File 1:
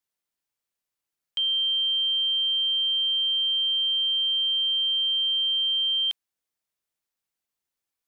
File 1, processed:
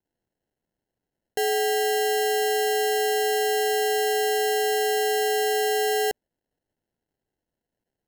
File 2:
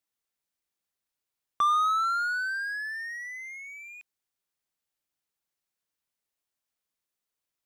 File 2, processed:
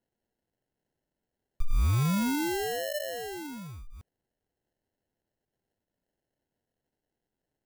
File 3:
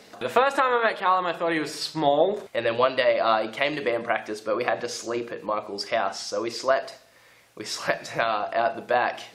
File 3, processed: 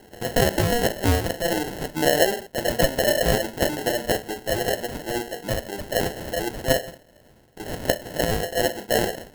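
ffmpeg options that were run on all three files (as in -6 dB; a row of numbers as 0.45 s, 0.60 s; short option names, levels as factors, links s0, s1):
-af "acrusher=samples=37:mix=1:aa=0.000001,crystalizer=i=0.5:c=0,volume=1.12"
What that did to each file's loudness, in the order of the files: -1.5 LU, -2.5 LU, +1.0 LU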